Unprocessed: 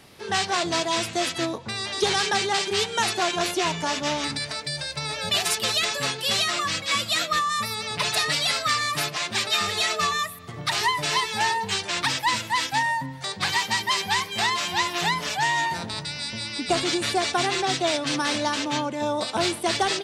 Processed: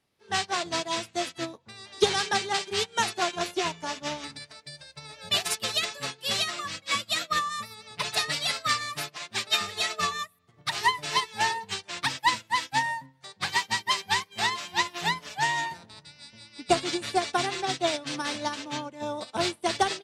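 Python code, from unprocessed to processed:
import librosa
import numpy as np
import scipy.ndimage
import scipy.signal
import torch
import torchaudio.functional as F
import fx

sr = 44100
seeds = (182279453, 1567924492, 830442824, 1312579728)

y = fx.upward_expand(x, sr, threshold_db=-37.0, expansion=2.5)
y = y * librosa.db_to_amplitude(2.5)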